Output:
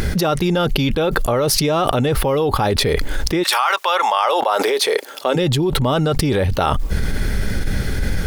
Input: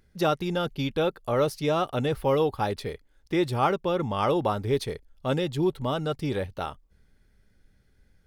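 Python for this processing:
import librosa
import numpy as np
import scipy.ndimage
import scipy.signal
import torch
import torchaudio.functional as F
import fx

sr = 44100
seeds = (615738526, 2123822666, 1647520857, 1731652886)

y = fx.highpass(x, sr, hz=fx.line((3.42, 1100.0), (5.35, 320.0)), slope=24, at=(3.42, 5.35), fade=0.02)
y = fx.env_flatten(y, sr, amount_pct=100)
y = y * 10.0 ** (3.5 / 20.0)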